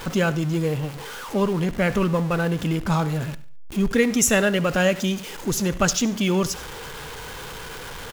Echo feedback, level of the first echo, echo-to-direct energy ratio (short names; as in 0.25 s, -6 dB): 41%, -19.0 dB, -16.5 dB